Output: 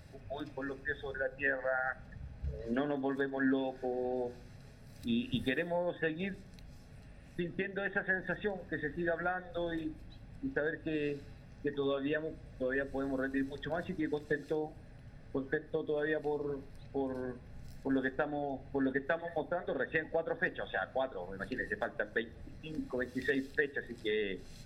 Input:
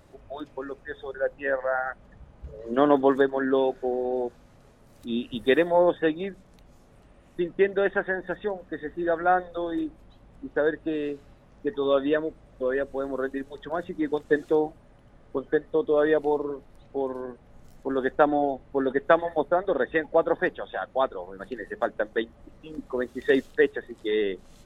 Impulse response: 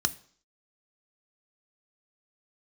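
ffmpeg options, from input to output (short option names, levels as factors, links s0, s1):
-filter_complex "[0:a]acompressor=threshold=0.0447:ratio=6,asplit=2[s0][s1];[1:a]atrim=start_sample=2205,asetrate=43659,aresample=44100[s2];[s1][s2]afir=irnorm=-1:irlink=0,volume=0.282[s3];[s0][s3]amix=inputs=2:normalize=0"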